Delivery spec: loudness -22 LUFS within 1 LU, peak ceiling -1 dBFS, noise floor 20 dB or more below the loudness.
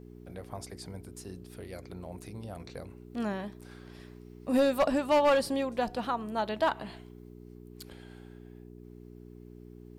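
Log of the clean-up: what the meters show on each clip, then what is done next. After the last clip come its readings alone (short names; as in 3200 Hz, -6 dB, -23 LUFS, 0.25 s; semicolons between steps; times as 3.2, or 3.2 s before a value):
clipped 0.5%; flat tops at -19.0 dBFS; hum 60 Hz; harmonics up to 420 Hz; hum level -46 dBFS; loudness -30.5 LUFS; peak -19.0 dBFS; loudness target -22.0 LUFS
-> clip repair -19 dBFS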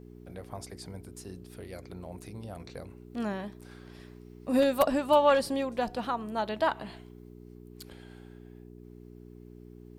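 clipped 0.0%; hum 60 Hz; harmonics up to 420 Hz; hum level -46 dBFS
-> de-hum 60 Hz, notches 7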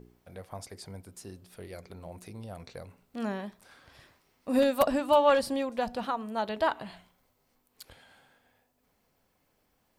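hum none; loudness -28.0 LUFS; peak -10.0 dBFS; loudness target -22.0 LUFS
-> gain +6 dB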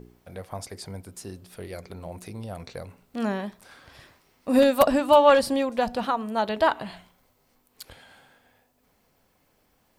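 loudness -22.0 LUFS; peak -4.0 dBFS; noise floor -67 dBFS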